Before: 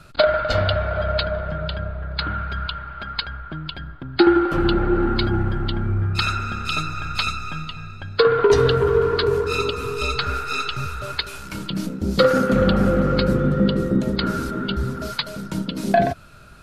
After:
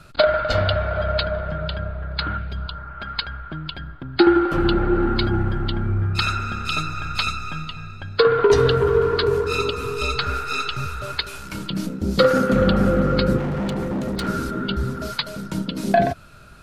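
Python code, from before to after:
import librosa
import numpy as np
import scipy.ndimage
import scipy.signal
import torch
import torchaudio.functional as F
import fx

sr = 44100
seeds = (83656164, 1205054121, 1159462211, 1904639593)

y = fx.peak_eq(x, sr, hz=fx.line((2.37, 960.0), (3.0, 4600.0)), db=-12.5, octaves=1.2, at=(2.37, 3.0), fade=0.02)
y = fx.clip_hard(y, sr, threshold_db=-22.0, at=(13.38, 14.28))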